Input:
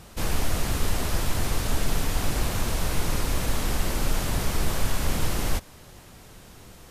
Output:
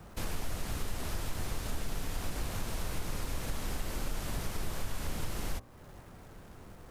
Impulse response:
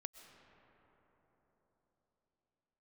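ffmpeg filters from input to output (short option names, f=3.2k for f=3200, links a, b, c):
-filter_complex "[0:a]bandreject=f=60.45:t=h:w=4,bandreject=f=120.9:t=h:w=4,bandreject=f=181.35:t=h:w=4,bandreject=f=241.8:t=h:w=4,bandreject=f=302.25:t=h:w=4,bandreject=f=362.7:t=h:w=4,bandreject=f=423.15:t=h:w=4,bandreject=f=483.6:t=h:w=4,bandreject=f=544.05:t=h:w=4,bandreject=f=604.5:t=h:w=4,bandreject=f=664.95:t=h:w=4,bandreject=f=725.4:t=h:w=4,bandreject=f=785.85:t=h:w=4,bandreject=f=846.3:t=h:w=4,bandreject=f=906.75:t=h:w=4,bandreject=f=967.2:t=h:w=4,bandreject=f=1.02765k:t=h:w=4,bandreject=f=1.0881k:t=h:w=4,bandreject=f=1.14855k:t=h:w=4,bandreject=f=1.209k:t=h:w=4,acrossover=split=110|640|1900[a][b][c][d];[d]aeval=exprs='sgn(val(0))*max(abs(val(0))-0.002,0)':c=same[e];[a][b][c][e]amix=inputs=4:normalize=0,acompressor=threshold=-35dB:ratio=2,volume=-2dB"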